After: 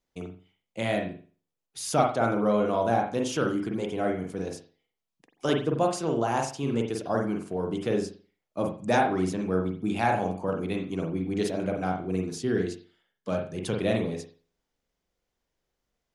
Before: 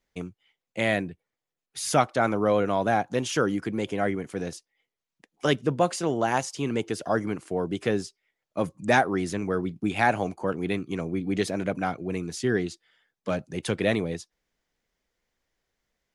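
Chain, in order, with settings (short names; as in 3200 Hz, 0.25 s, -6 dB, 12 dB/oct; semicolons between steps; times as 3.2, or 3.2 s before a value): bell 1900 Hz -7 dB 0.74 oct; reverb, pre-delay 43 ms, DRR 1.5 dB; gain -3 dB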